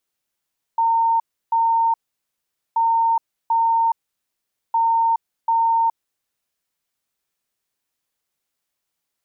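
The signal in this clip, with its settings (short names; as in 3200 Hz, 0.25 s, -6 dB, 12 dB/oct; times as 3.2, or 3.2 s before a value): beep pattern sine 914 Hz, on 0.42 s, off 0.32 s, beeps 2, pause 0.82 s, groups 3, -14.5 dBFS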